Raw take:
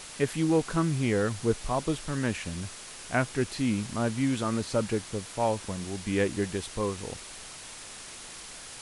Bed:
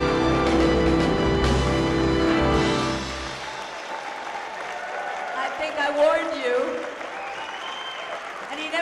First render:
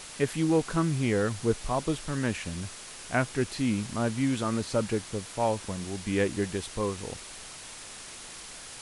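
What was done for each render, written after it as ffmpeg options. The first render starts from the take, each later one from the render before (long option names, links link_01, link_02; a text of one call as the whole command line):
ffmpeg -i in.wav -af anull out.wav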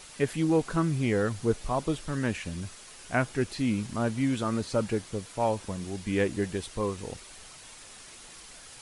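ffmpeg -i in.wav -af "afftdn=noise_reduction=6:noise_floor=-44" out.wav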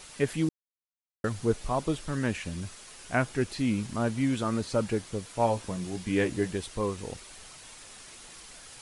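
ffmpeg -i in.wav -filter_complex "[0:a]asettb=1/sr,asplit=3[link_01][link_02][link_03];[link_01]atrim=end=5.344[link_04];[link_02]atrim=start=5.34:end=6.51,asetpts=PTS-STARTPTS,afade=type=in:duration=0.004:curve=qsin,afade=type=out:start_time=1.166:duration=0.004:curve=qsin,asplit=2[link_05][link_06];[link_06]adelay=17,volume=-7.5dB[link_07];[link_05][link_07]amix=inputs=2:normalize=0,atrim=end_sample=51597[link_08];[link_03]atrim=start=6.506[link_09];[link_04][link_08]acrossfade=duration=0.004:curve1=hsin:curve2=qsin[link_10];[link_10][link_09]acrossfade=duration=0.004:curve1=qsin:curve2=hsin,asplit=3[link_11][link_12][link_13];[link_11]atrim=end=0.49,asetpts=PTS-STARTPTS,afade=type=out:start_time=0.486:duration=0.004:curve=hsin[link_14];[link_12]atrim=start=0.49:end=1.24,asetpts=PTS-STARTPTS,volume=0[link_15];[link_13]atrim=start=1.24,asetpts=PTS-STARTPTS,afade=type=in:duration=0.004:curve=hsin[link_16];[link_14][link_15][link_16]concat=n=3:v=0:a=1" out.wav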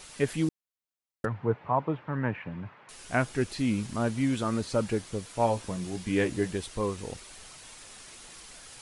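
ffmpeg -i in.wav -filter_complex "[0:a]asettb=1/sr,asplit=3[link_01][link_02][link_03];[link_01]atrim=end=1.254[link_04];[link_02]atrim=start=1.25:end=2.89,asetpts=PTS-STARTPTS,afade=type=in:duration=0.004:curve=qsin,afade=type=out:start_time=1.636:duration=0.004:curve=qsin,highpass=frequency=110:width=0.5412,highpass=frequency=110:width=1.3066,equalizer=frequency=120:width_type=q:width=4:gain=4,equalizer=frequency=220:width_type=q:width=4:gain=-4,equalizer=frequency=360:width_type=q:width=4:gain=-4,equalizer=frequency=920:width_type=q:width=4:gain=8,lowpass=frequency=2200:width=0.5412,lowpass=frequency=2200:width=1.3066[link_05];[link_03]atrim=start=2.886[link_06];[link_04][link_05]acrossfade=duration=0.004:curve1=hsin:curve2=qsin[link_07];[link_07][link_06]acrossfade=duration=0.004:curve1=qsin:curve2=hsin" out.wav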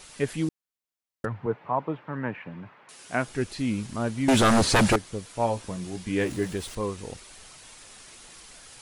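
ffmpeg -i in.wav -filter_complex "[0:a]asettb=1/sr,asplit=3[link_01][link_02][link_03];[link_01]atrim=end=1.464[link_04];[link_02]atrim=start=1.46:end=3.28,asetpts=PTS-STARTPTS,afade=type=in:duration=0.004:curve=qsin,afade=type=out:start_time=1.816:duration=0.004:curve=qsin,highpass=150[link_05];[link_03]atrim=start=3.276[link_06];[link_04][link_05]acrossfade=duration=0.004:curve1=hsin:curve2=qsin[link_07];[link_07][link_06]acrossfade=duration=0.004:curve1=qsin:curve2=hsin,asettb=1/sr,asplit=3[link_08][link_09][link_10];[link_08]atrim=end=4.284[link_11];[link_09]atrim=start=4.28:end=4.96,asetpts=PTS-STARTPTS,afade=type=in:duration=0.004:curve=qsin,afade=type=out:start_time=0.676:duration=0.004:curve=qsin,aeval=exprs='0.178*sin(PI/2*3.98*val(0)/0.178)':channel_layout=same[link_12];[link_10]atrim=start=4.956[link_13];[link_11][link_12]acrossfade=duration=0.004:curve1=hsin:curve2=qsin[link_14];[link_14][link_13]acrossfade=duration=0.004:curve1=qsin:curve2=hsin,asettb=1/sr,asplit=3[link_15][link_16][link_17];[link_15]atrim=end=6.214[link_18];[link_16]atrim=start=6.21:end=6.75,asetpts=PTS-STARTPTS,afade=type=in:duration=0.004:curve=qsin,afade=type=out:start_time=0.536:duration=0.004:curve=qsin,aeval=exprs='val(0)+0.5*0.00944*sgn(val(0))':channel_layout=same[link_19];[link_17]atrim=start=6.746[link_20];[link_18][link_19]acrossfade=duration=0.004:curve1=hsin:curve2=qsin[link_21];[link_21][link_20]acrossfade=duration=0.004:curve1=qsin:curve2=hsin" out.wav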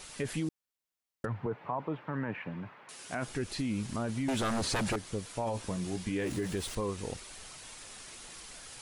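ffmpeg -i in.wav -af "alimiter=limit=-22.5dB:level=0:latency=1:release=17,acompressor=threshold=-29dB:ratio=6" out.wav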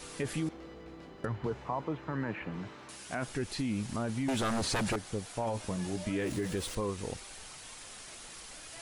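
ffmpeg -i in.wav -i bed.wav -filter_complex "[1:a]volume=-29dB[link_01];[0:a][link_01]amix=inputs=2:normalize=0" out.wav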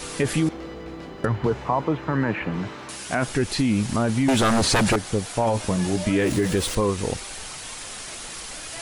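ffmpeg -i in.wav -af "volume=12dB" out.wav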